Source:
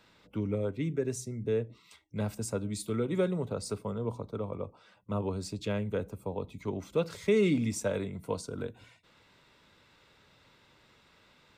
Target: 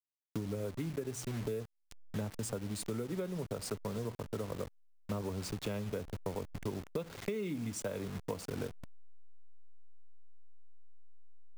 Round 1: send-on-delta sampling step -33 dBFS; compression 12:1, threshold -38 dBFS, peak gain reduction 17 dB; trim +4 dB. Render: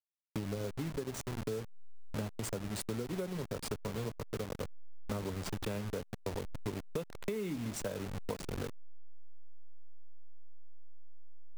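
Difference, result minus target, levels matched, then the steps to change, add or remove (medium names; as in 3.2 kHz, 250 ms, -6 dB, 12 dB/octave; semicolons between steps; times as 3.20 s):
send-on-delta sampling: distortion +7 dB
change: send-on-delta sampling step -39.5 dBFS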